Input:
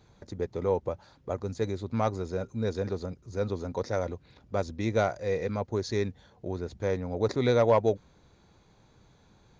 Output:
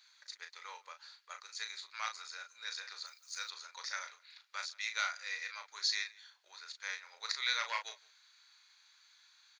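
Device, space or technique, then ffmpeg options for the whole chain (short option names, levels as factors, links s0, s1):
headphones lying on a table: -filter_complex "[0:a]bandreject=f=710:w=12,asplit=2[s0][s1];[s1]adelay=36,volume=0.447[s2];[s0][s2]amix=inputs=2:normalize=0,asplit=3[s3][s4][s5];[s3]afade=t=out:st=3.05:d=0.02[s6];[s4]aemphasis=mode=production:type=bsi,afade=t=in:st=3.05:d=0.02,afade=t=out:st=3.49:d=0.02[s7];[s5]afade=t=in:st=3.49:d=0.02[s8];[s6][s7][s8]amix=inputs=3:normalize=0,highpass=f=1500:w=0.5412,highpass=f=1500:w=1.3066,equalizer=f=4400:t=o:w=0.25:g=7.5,asplit=2[s9][s10];[s10]adelay=163.3,volume=0.0631,highshelf=f=4000:g=-3.67[s11];[s9][s11]amix=inputs=2:normalize=0,volume=1.41"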